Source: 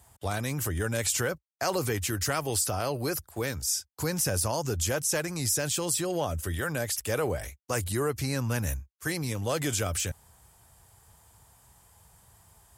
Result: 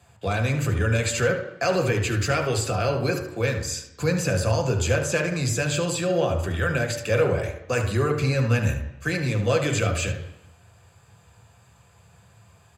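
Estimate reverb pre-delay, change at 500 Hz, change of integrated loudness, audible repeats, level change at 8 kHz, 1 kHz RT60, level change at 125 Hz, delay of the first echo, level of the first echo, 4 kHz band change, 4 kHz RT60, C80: 3 ms, +7.5 dB, +5.0 dB, 1, -2.5 dB, 0.90 s, +8.5 dB, 74 ms, -11.5 dB, +2.5 dB, 0.90 s, 11.5 dB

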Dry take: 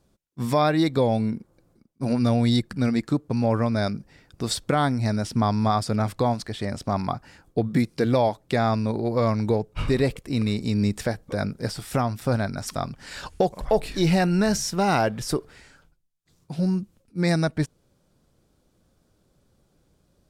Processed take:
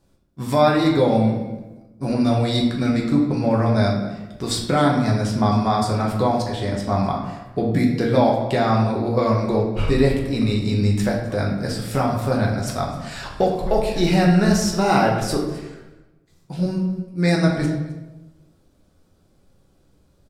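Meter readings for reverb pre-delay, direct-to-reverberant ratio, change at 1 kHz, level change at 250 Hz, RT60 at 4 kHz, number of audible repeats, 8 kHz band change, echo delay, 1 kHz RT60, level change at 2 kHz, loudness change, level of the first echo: 3 ms, -2.0 dB, +4.5 dB, +4.5 dB, 0.80 s, 1, +2.0 dB, 0.261 s, 1.0 s, +4.0 dB, +4.0 dB, -19.0 dB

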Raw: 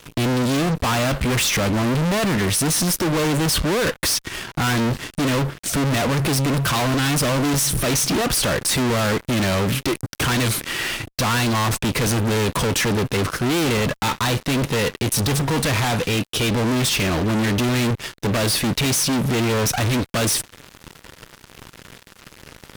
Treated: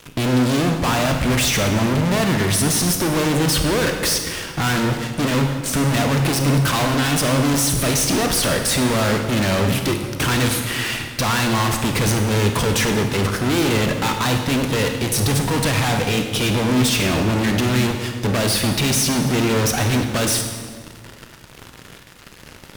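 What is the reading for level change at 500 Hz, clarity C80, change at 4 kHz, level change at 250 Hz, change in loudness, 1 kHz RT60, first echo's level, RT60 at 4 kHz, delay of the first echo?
+1.5 dB, 7.0 dB, +1.0 dB, +2.0 dB, +1.5 dB, 1.5 s, none, 1.3 s, none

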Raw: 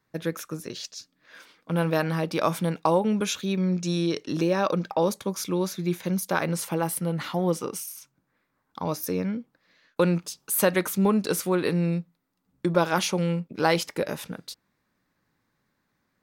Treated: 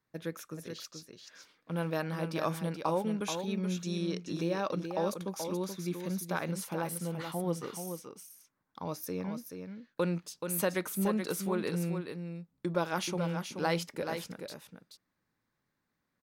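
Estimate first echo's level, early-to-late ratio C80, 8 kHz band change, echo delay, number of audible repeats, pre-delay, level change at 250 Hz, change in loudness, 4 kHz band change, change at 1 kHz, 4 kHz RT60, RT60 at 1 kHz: -7.0 dB, none, -8.0 dB, 0.429 s, 1, none, -8.0 dB, -8.5 dB, -8.0 dB, -8.0 dB, none, none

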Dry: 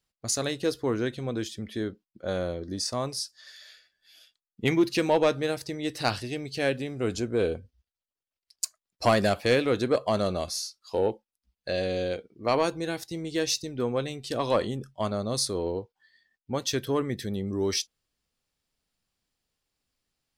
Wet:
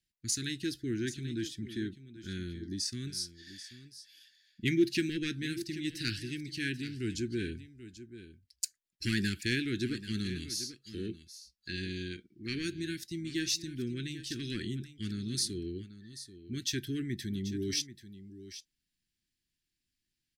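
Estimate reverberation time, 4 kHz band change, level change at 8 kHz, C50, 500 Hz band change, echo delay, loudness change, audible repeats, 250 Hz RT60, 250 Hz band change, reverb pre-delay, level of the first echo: none, -3.5 dB, -4.0 dB, none, -15.0 dB, 0.786 s, -7.0 dB, 1, none, -4.0 dB, none, -14.0 dB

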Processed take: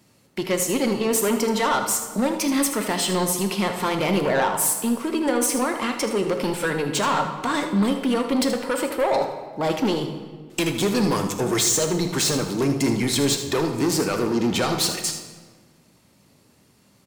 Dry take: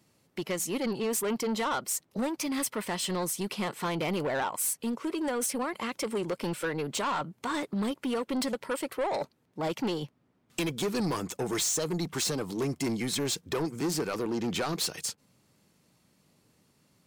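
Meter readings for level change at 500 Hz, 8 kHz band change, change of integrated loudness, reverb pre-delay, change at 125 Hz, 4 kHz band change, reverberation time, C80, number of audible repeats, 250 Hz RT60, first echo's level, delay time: +9.0 dB, +8.5 dB, +9.0 dB, 3 ms, +8.5 dB, +8.5 dB, 1.5 s, 9.5 dB, 1, 1.7 s, -11.0 dB, 78 ms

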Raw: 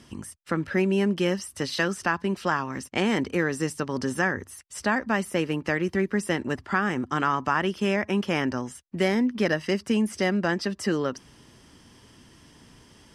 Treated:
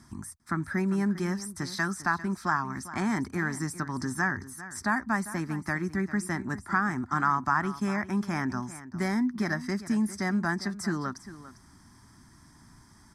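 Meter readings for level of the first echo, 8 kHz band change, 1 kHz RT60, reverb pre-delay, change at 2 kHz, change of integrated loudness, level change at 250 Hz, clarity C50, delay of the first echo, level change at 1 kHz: -15.0 dB, -1.5 dB, none, none, -2.5 dB, -3.5 dB, -3.0 dB, none, 0.399 s, -1.0 dB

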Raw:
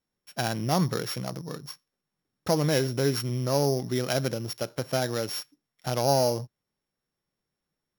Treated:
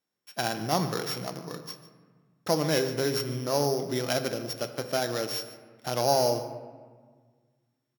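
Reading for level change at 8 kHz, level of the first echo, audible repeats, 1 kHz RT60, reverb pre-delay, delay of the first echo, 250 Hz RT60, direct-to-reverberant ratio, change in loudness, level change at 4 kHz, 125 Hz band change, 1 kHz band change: -0.5 dB, -17.0 dB, 1, 1.6 s, 3 ms, 0.148 s, 2.1 s, 8.0 dB, -1.0 dB, +0.5 dB, -6.0 dB, +0.5 dB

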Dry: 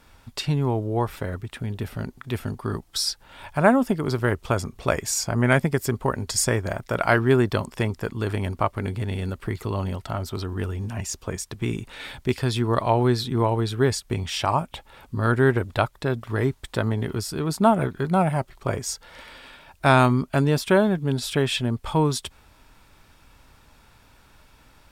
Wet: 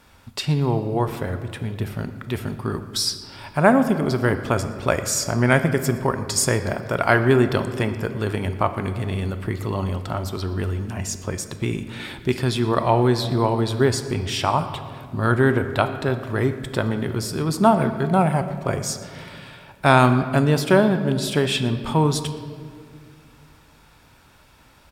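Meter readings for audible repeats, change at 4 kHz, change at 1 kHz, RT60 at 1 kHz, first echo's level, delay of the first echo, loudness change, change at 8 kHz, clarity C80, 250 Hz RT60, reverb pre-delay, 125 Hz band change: 1, +2.5 dB, +2.5 dB, 1.8 s, -21.0 dB, 0.118 s, +2.5 dB, +2.0 dB, 11.5 dB, 2.9 s, 5 ms, +2.0 dB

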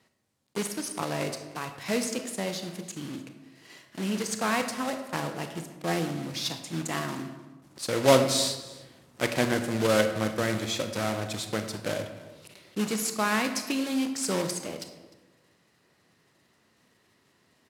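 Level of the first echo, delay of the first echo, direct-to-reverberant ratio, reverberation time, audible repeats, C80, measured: -21.5 dB, 0.303 s, 7.0 dB, 1.2 s, 1, 10.0 dB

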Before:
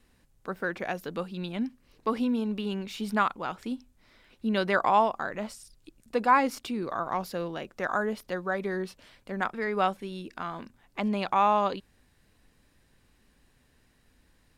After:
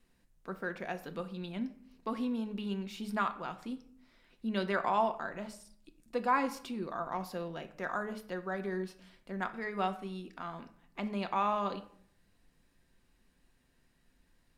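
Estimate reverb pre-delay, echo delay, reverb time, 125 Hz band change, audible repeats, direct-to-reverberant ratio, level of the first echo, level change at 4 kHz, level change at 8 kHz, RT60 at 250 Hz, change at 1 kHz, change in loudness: 3 ms, none, 0.60 s, -4.5 dB, none, 7.0 dB, none, -7.0 dB, -7.0 dB, 0.80 s, -7.5 dB, -7.0 dB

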